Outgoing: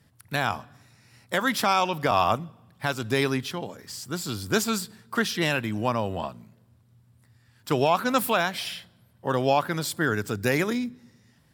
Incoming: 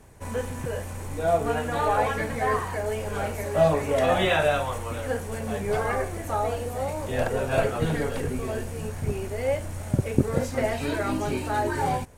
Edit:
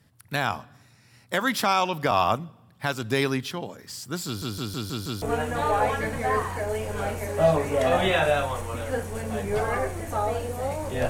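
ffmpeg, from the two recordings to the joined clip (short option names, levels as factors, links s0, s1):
-filter_complex "[0:a]apad=whole_dur=11.09,atrim=end=11.09,asplit=6[s0][s1][s2][s3][s4][s5];[s0]atrim=end=4.422[s6];[s1]atrim=start=4.258:end=4.422[s7];[s2]atrim=start=4.258:end=4.422[s8];[s3]atrim=start=4.258:end=4.422[s9];[s4]atrim=start=4.258:end=4.422[s10];[s5]atrim=start=4.258:end=4.422[s11];[1:a]atrim=start=1.388:end=7.26[s12];[s6][s7]acrossfade=d=0.004:c1=hsin:c2=hsin[s13];[s13][s8]acrossfade=d=0.004:c1=hsin:c2=hsin[s14];[s14][s9]acrossfade=d=0.004:c1=hsin:c2=hsin[s15];[s15][s10]acrossfade=d=0.004:c1=hsin:c2=hsin[s16];[s16][s11]acrossfade=d=0.004:c1=hsin:c2=hsin[s17];[s17][s12]acrossfade=d=0.004:c1=hsin:c2=hsin"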